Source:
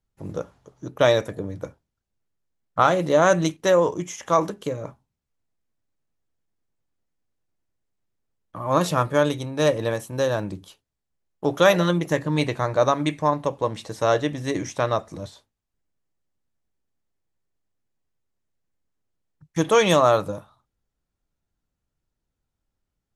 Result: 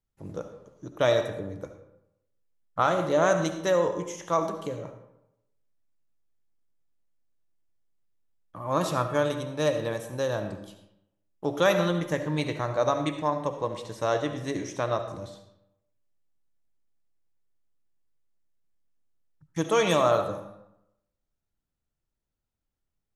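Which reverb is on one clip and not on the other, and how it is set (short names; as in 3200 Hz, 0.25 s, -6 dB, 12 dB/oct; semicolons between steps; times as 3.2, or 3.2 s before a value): digital reverb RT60 0.84 s, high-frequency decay 0.65×, pre-delay 30 ms, DRR 7.5 dB; gain -6 dB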